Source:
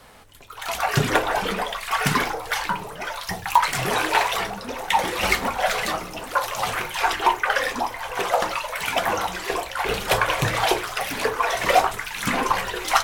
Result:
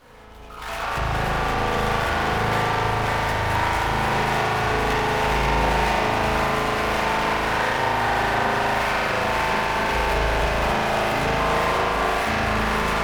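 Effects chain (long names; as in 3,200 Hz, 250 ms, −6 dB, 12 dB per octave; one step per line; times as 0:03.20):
sub-octave generator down 1 octave, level +2 dB
multi-voice chorus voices 6, 0.19 Hz, delay 16 ms, depth 2.4 ms
downward compressor, threshold −29 dBFS, peak gain reduction 14 dB
delay that swaps between a low-pass and a high-pass 264 ms, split 970 Hz, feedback 85%, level −2 dB
spring reverb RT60 3.9 s, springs 37 ms, chirp 55 ms, DRR −8 dB
windowed peak hold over 5 samples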